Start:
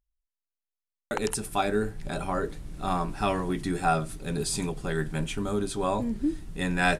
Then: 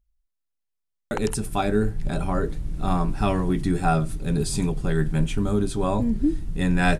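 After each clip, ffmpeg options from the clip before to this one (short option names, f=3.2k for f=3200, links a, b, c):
-af "lowshelf=f=260:g=11.5"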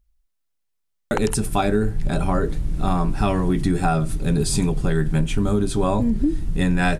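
-af "acompressor=threshold=-21dB:ratio=6,volume=6dB"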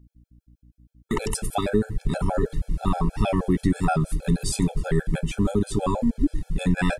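-af "aeval=exprs='val(0)+0.00316*(sin(2*PI*60*n/s)+sin(2*PI*2*60*n/s)/2+sin(2*PI*3*60*n/s)/3+sin(2*PI*4*60*n/s)/4+sin(2*PI*5*60*n/s)/5)':c=same,afftfilt=real='re*gt(sin(2*PI*6.3*pts/sr)*(1-2*mod(floor(b*sr/1024/440),2)),0)':imag='im*gt(sin(2*PI*6.3*pts/sr)*(1-2*mod(floor(b*sr/1024/440),2)),0)':win_size=1024:overlap=0.75"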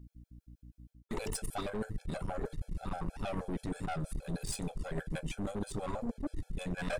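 -af "aeval=exprs='(tanh(14.1*val(0)+0.6)-tanh(0.6))/14.1':c=same,areverse,acompressor=threshold=-36dB:ratio=12,areverse,volume=3.5dB"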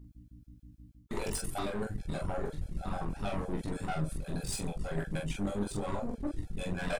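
-af "aecho=1:1:20|44:0.562|0.668"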